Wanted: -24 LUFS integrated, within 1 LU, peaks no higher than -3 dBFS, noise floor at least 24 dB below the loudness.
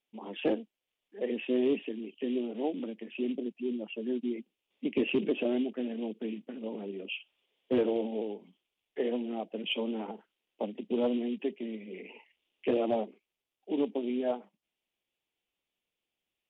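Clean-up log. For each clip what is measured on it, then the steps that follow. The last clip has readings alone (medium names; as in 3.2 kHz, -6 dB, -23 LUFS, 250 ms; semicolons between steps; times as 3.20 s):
loudness -33.5 LUFS; peak level -18.5 dBFS; loudness target -24.0 LUFS
-> trim +9.5 dB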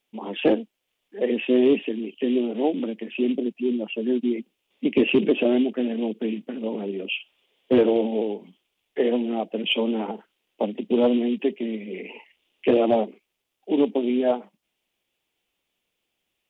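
loudness -24.0 LUFS; peak level -9.0 dBFS; noise floor -79 dBFS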